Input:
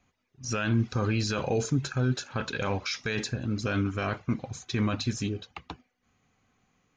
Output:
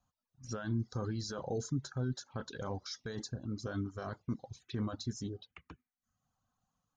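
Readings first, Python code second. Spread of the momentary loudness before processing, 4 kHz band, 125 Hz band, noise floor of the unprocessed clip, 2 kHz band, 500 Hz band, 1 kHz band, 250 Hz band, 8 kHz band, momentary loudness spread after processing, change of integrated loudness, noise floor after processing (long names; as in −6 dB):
9 LU, −11.0 dB, −9.5 dB, −77 dBFS, −16.0 dB, −9.5 dB, −11.0 dB, −9.0 dB, −9.5 dB, 10 LU, −10.0 dB, below −85 dBFS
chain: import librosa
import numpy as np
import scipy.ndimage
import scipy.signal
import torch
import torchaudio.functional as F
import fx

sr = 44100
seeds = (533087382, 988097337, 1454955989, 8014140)

y = fx.dereverb_blind(x, sr, rt60_s=0.7)
y = fx.env_phaser(y, sr, low_hz=370.0, high_hz=2500.0, full_db=-30.0)
y = y * librosa.db_to_amplitude(-8.0)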